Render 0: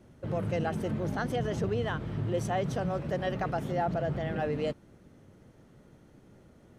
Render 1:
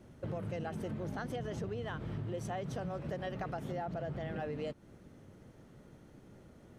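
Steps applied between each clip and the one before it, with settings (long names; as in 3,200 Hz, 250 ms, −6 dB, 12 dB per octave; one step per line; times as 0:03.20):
downward compressor, threshold −36 dBFS, peak gain reduction 10.5 dB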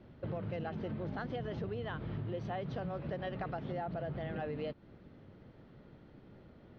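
Butterworth low-pass 4,500 Hz 36 dB per octave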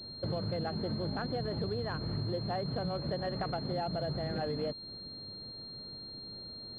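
switching amplifier with a slow clock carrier 4,200 Hz
level +4 dB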